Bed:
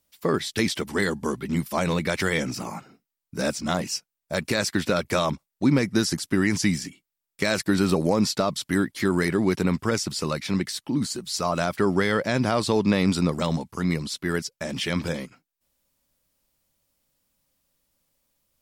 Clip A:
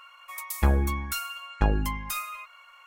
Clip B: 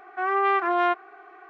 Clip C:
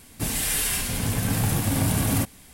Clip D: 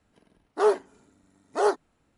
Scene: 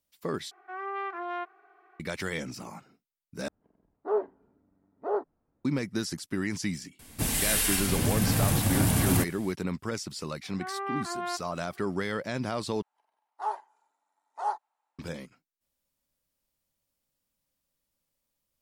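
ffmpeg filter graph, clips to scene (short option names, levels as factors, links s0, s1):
-filter_complex "[2:a]asplit=2[s0][s1];[4:a]asplit=2[s2][s3];[0:a]volume=0.355[s4];[s2]lowpass=1000[s5];[s3]highpass=f=860:t=q:w=7.6[s6];[s4]asplit=4[s7][s8][s9][s10];[s7]atrim=end=0.514[s11];[s0]atrim=end=1.49,asetpts=PTS-STARTPTS,volume=0.237[s12];[s8]atrim=start=1.996:end=3.484[s13];[s5]atrim=end=2.17,asetpts=PTS-STARTPTS,volume=0.501[s14];[s9]atrim=start=5.646:end=12.824[s15];[s6]atrim=end=2.17,asetpts=PTS-STARTPTS,volume=0.158[s16];[s10]atrim=start=14.986[s17];[3:a]atrim=end=2.53,asetpts=PTS-STARTPTS,volume=0.841,afade=t=in:d=0.004:c=hsin,afade=t=out:st=2.526:d=0.004:c=hsin,adelay=6990[s18];[s1]atrim=end=1.49,asetpts=PTS-STARTPTS,volume=0.251,afade=t=in:d=0.004:c=hsin,afade=t=out:st=1.486:d=0.004:c=hsin,adelay=10430[s19];[s11][s12]acrossfade=d=0.004:c1=hsin:c2=hsin[s20];[s20][s13]acrossfade=d=0.004:c1=hsin:c2=hsin[s21];[s21][s14]acrossfade=d=0.004:c1=hsin:c2=hsin[s22];[s22][s15]acrossfade=d=0.004:c1=hsin:c2=hsin[s23];[s23][s16]acrossfade=d=0.004:c1=hsin:c2=hsin[s24];[s24][s17]acrossfade=d=0.004:c1=hsin:c2=hsin[s25];[s25][s18][s19]amix=inputs=3:normalize=0"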